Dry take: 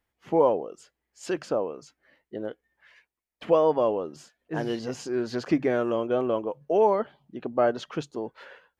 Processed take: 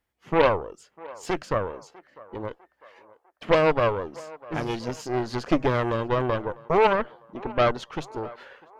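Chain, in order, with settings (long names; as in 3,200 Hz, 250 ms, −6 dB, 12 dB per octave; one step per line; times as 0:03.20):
harmonic generator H 6 −11 dB, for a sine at −9 dBFS
on a send: feedback echo with a band-pass in the loop 650 ms, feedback 58%, band-pass 880 Hz, level −19 dB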